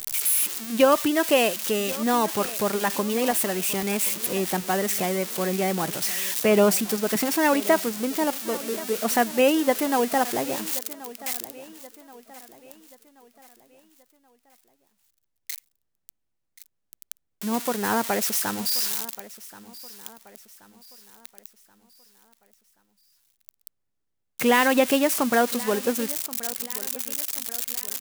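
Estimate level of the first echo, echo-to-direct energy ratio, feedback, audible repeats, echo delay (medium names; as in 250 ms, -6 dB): -18.0 dB, -17.0 dB, 44%, 3, 1079 ms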